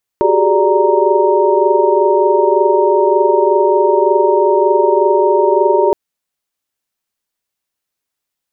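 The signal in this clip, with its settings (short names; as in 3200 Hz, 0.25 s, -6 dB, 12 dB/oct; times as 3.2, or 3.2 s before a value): chord F#4/G4/G#4/D5/A#5 sine, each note -15 dBFS 5.72 s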